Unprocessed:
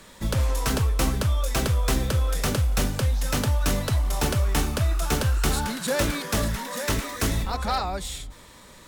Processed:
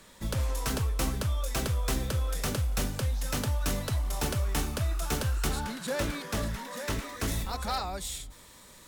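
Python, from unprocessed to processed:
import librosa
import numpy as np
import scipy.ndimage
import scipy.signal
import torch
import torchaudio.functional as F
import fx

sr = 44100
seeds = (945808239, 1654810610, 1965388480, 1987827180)

y = fx.high_shelf(x, sr, hz=5500.0, db=fx.steps((0.0, 2.5), (5.47, -4.0), (7.27, 8.5)))
y = y * librosa.db_to_amplitude(-6.5)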